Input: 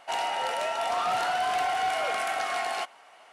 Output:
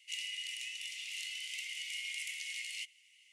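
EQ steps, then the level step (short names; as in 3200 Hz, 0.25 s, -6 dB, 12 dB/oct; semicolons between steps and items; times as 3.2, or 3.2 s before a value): rippled Chebyshev high-pass 2000 Hz, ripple 6 dB; -1.5 dB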